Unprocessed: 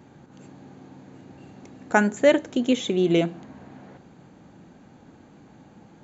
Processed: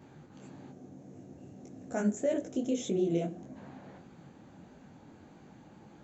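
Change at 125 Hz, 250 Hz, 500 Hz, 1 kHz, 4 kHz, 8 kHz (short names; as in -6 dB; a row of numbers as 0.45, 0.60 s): -7.5 dB, -8.5 dB, -10.5 dB, -16.5 dB, -16.0 dB, n/a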